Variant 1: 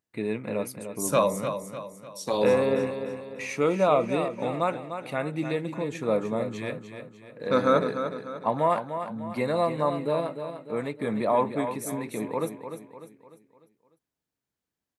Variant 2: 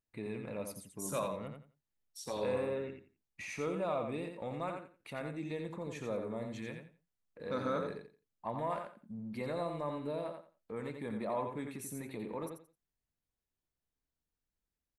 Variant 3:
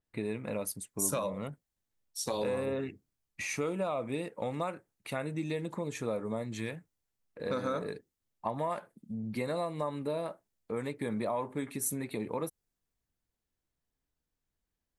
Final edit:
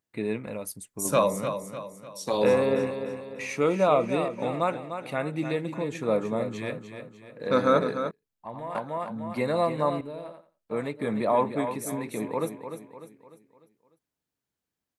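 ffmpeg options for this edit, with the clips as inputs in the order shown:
-filter_complex "[1:a]asplit=2[a][b];[0:a]asplit=4[c][d][e][f];[c]atrim=end=0.472[g];[2:a]atrim=start=0.468:end=1.052[h];[d]atrim=start=1.048:end=8.112[i];[a]atrim=start=8.108:end=8.752[j];[e]atrim=start=8.748:end=10.012[k];[b]atrim=start=10.008:end=10.712[l];[f]atrim=start=10.708[m];[g][h]acrossfade=d=0.004:c1=hsin:c2=hsin[n];[n][i]acrossfade=d=0.004:c1=hsin:c2=hsin[o];[o][j]acrossfade=d=0.004:c1=hsin:c2=hsin[p];[p][k]acrossfade=d=0.004:c1=hsin:c2=hsin[q];[q][l]acrossfade=d=0.004:c1=hsin:c2=hsin[r];[r][m]acrossfade=d=0.004:c1=hsin:c2=hsin"

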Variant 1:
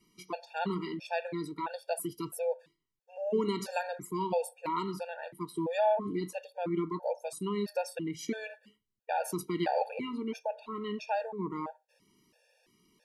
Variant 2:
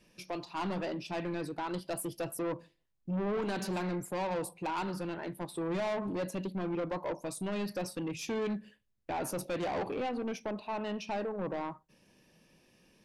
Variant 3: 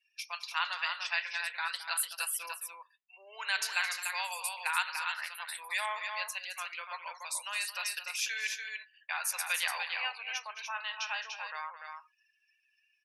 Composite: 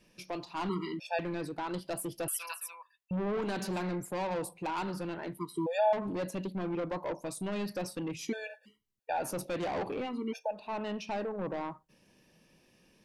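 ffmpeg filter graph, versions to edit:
-filter_complex "[0:a]asplit=4[a][b][c][d];[1:a]asplit=6[e][f][g][h][i][j];[e]atrim=end=0.692[k];[a]atrim=start=0.688:end=1.192[l];[f]atrim=start=1.188:end=2.282[m];[2:a]atrim=start=2.278:end=3.112[n];[g]atrim=start=3.108:end=5.382[o];[b]atrim=start=5.378:end=5.932[p];[h]atrim=start=5.928:end=8.35[q];[c]atrim=start=8.11:end=9.32[r];[i]atrim=start=9.08:end=10.2[s];[d]atrim=start=9.96:end=10.73[t];[j]atrim=start=10.49[u];[k][l]acrossfade=d=0.004:c1=hsin:c2=hsin[v];[v][m]acrossfade=d=0.004:c1=hsin:c2=hsin[w];[w][n]acrossfade=d=0.004:c1=hsin:c2=hsin[x];[x][o]acrossfade=d=0.004:c1=hsin:c2=hsin[y];[y][p]acrossfade=d=0.004:c1=hsin:c2=hsin[z];[z][q]acrossfade=d=0.004:c1=hsin:c2=hsin[aa];[aa][r]acrossfade=d=0.24:c1=tri:c2=tri[ab];[ab][s]acrossfade=d=0.24:c1=tri:c2=tri[ac];[ac][t]acrossfade=d=0.24:c1=tri:c2=tri[ad];[ad][u]acrossfade=d=0.24:c1=tri:c2=tri"

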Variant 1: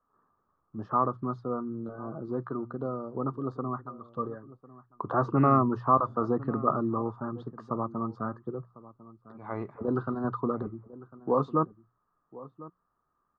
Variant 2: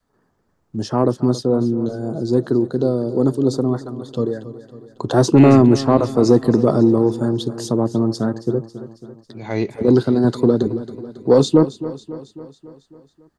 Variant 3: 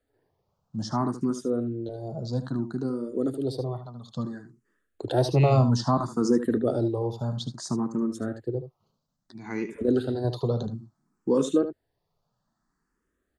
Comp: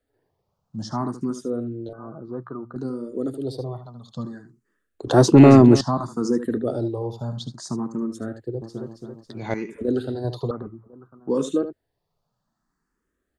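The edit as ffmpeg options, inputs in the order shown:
-filter_complex "[0:a]asplit=2[a][b];[1:a]asplit=2[c][d];[2:a]asplit=5[e][f][g][h][i];[e]atrim=end=1.932[j];[a]atrim=start=1.928:end=2.762[k];[f]atrim=start=2.758:end=5.072[l];[c]atrim=start=5.068:end=5.812[m];[g]atrim=start=5.808:end=8.622[n];[d]atrim=start=8.618:end=9.542[o];[h]atrim=start=9.538:end=10.512[p];[b]atrim=start=10.508:end=11.292[q];[i]atrim=start=11.288[r];[j][k]acrossfade=d=0.004:c1=hsin:c2=hsin[s];[s][l]acrossfade=d=0.004:c1=hsin:c2=hsin[t];[t][m]acrossfade=d=0.004:c1=hsin:c2=hsin[u];[u][n]acrossfade=d=0.004:c1=hsin:c2=hsin[v];[v][o]acrossfade=d=0.004:c1=hsin:c2=hsin[w];[w][p]acrossfade=d=0.004:c1=hsin:c2=hsin[x];[x][q]acrossfade=d=0.004:c1=hsin:c2=hsin[y];[y][r]acrossfade=d=0.004:c1=hsin:c2=hsin"

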